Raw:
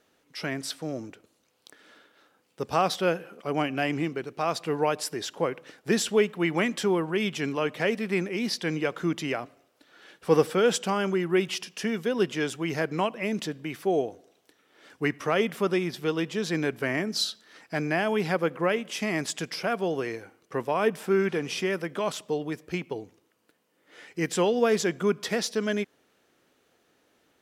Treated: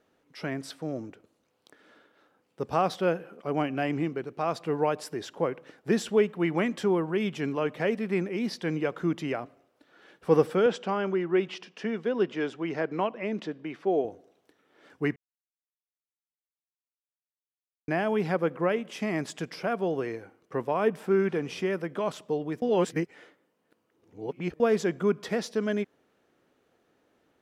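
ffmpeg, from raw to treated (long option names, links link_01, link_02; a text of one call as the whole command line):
ffmpeg -i in.wav -filter_complex "[0:a]asettb=1/sr,asplit=3[link_01][link_02][link_03];[link_01]atrim=end=10.664[link_04];[link_02]atrim=start=10.66:end=14.05,asetpts=PTS-STARTPTS,afade=type=in:duration=0.004:curve=qsin,afade=type=out:start_time=3.386:duration=0.004:curve=qsin,highpass=210,lowpass=4700[link_05];[link_03]atrim=start=14.046[link_06];[link_04][link_05]acrossfade=duration=0.004:curve1=hsin:curve2=qsin[link_07];[link_07][link_06]acrossfade=duration=0.004:curve1=qsin:curve2=hsin,asplit=5[link_08][link_09][link_10][link_11][link_12];[link_08]atrim=end=15.16,asetpts=PTS-STARTPTS,afade=type=out:start_time=15.156:duration=0.004:curve=hsin[link_13];[link_09]atrim=start=15.16:end=17.88,asetpts=PTS-STARTPTS,volume=0[link_14];[link_10]atrim=start=17.88:end=22.622,asetpts=PTS-STARTPTS,afade=type=in:duration=0.004:curve=hsin[link_15];[link_11]atrim=start=22.618:end=24.602,asetpts=PTS-STARTPTS,areverse[link_16];[link_12]atrim=start=24.598[link_17];[link_13][link_14][link_15]concat=n=3:v=0:a=1[link_18];[link_18][link_16]acrossfade=duration=0.004:curve1=hsin:curve2=hsin[link_19];[link_19][link_17]acrossfade=duration=0.004:curve1=hsin:curve2=hsin,highshelf=frequency=2200:gain=-10.5" out.wav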